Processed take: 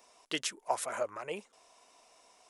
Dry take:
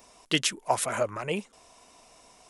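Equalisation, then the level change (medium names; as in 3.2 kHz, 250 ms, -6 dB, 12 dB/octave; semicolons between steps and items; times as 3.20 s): tone controls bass -15 dB, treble +2 dB; treble shelf 7.8 kHz -7.5 dB; dynamic bell 3 kHz, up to -4 dB, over -43 dBFS, Q 0.98; -5.5 dB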